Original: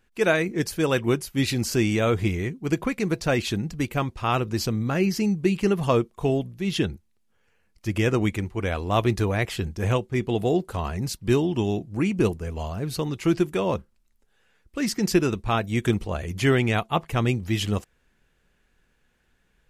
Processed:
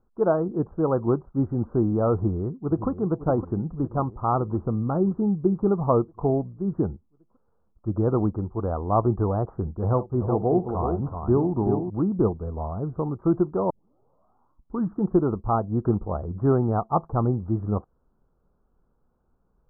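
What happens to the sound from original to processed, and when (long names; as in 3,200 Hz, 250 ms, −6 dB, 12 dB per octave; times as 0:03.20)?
0:02.14–0:02.88: delay throw 560 ms, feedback 65%, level −11.5 dB
0:09.84–0:11.90: multi-tap delay 55/285/377 ms −16/−19/−6 dB
0:13.70: tape start 1.32 s
whole clip: Butterworth low-pass 1,300 Hz 72 dB per octave; dynamic equaliser 820 Hz, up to +4 dB, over −43 dBFS, Q 3.5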